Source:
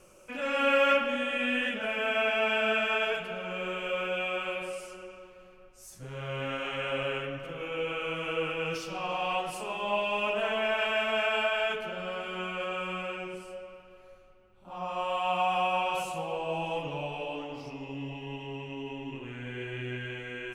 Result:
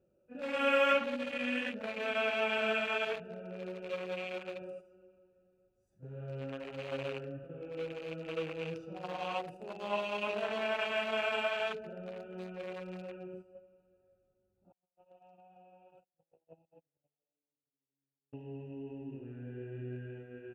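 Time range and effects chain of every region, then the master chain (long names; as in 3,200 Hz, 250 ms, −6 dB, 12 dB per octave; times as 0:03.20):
0:14.72–0:18.33: noise gate −30 dBFS, range −44 dB + downward compressor 16 to 1, threshold −35 dBFS
whole clip: adaptive Wiener filter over 41 samples; noise gate −44 dBFS, range −9 dB; high-pass filter 58 Hz; level −3 dB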